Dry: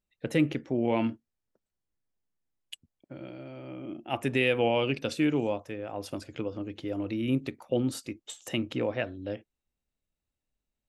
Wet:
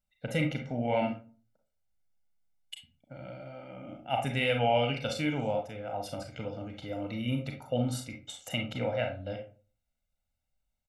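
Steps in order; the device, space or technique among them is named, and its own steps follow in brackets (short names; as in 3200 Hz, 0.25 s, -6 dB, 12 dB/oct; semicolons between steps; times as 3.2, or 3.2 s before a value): microphone above a desk (comb 1.4 ms, depth 88%; reverb RT60 0.40 s, pre-delay 33 ms, DRR 2.5 dB); gain -4 dB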